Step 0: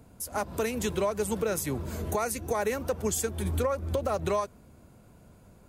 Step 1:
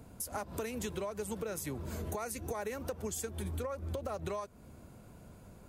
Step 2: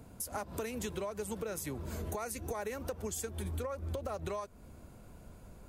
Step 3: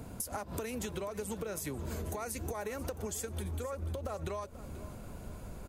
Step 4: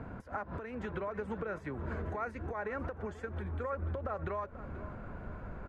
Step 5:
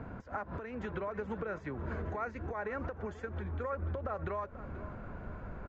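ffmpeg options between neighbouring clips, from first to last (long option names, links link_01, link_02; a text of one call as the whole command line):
ffmpeg -i in.wav -af "acompressor=threshold=-38dB:ratio=4,volume=1dB" out.wav
ffmpeg -i in.wav -af "asubboost=boost=2.5:cutoff=65" out.wav
ffmpeg -i in.wav -af "acompressor=threshold=-43dB:ratio=6,aecho=1:1:487|974|1461:0.158|0.0571|0.0205,volume=7.5dB" out.wav
ffmpeg -i in.wav -af "alimiter=level_in=5dB:limit=-24dB:level=0:latency=1:release=369,volume=-5dB,lowpass=frequency=1600:width_type=q:width=2.3,volume=1dB" out.wav
ffmpeg -i in.wav -af "aresample=16000,aresample=44100" out.wav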